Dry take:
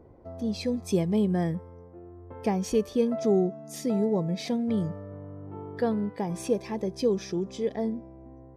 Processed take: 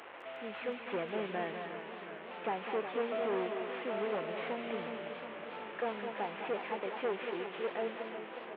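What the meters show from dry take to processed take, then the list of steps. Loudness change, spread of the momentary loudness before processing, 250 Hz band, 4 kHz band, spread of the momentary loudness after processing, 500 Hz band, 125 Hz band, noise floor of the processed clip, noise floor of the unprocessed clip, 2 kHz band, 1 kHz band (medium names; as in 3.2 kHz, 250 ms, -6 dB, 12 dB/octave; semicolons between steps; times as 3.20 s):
-10.0 dB, 17 LU, -16.5 dB, -4.5 dB, 9 LU, -7.5 dB, -21.5 dB, -47 dBFS, -49 dBFS, +5.5 dB, 0.0 dB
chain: one-bit delta coder 16 kbps, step -38 dBFS; high-pass 670 Hz 12 dB/octave; on a send: multi-tap echo 206/219 ms -9/-11.5 dB; on the sum: modulated delay 362 ms, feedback 73%, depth 66 cents, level -10.5 dB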